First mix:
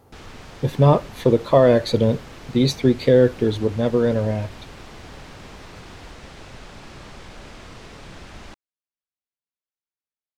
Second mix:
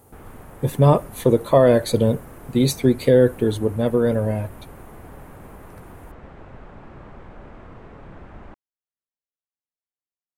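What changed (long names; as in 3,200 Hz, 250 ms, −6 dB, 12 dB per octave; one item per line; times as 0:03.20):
background: add low-pass filter 1,400 Hz 12 dB per octave
master: add high shelf with overshoot 6,800 Hz +10.5 dB, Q 1.5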